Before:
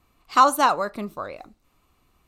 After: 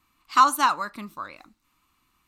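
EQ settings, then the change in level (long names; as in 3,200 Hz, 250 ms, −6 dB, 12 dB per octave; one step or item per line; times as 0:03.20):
low-shelf EQ 210 Hz −11.5 dB
flat-topped bell 540 Hz −12 dB 1.2 octaves
0.0 dB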